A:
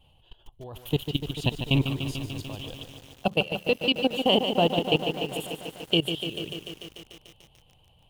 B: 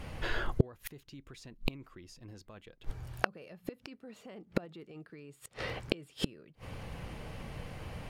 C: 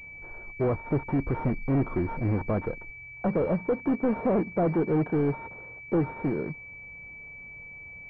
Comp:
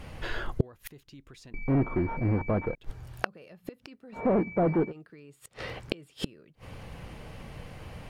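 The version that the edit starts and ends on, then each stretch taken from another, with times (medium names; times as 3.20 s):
B
1.54–2.75 s: from C
4.17–4.88 s: from C, crossfade 0.10 s
not used: A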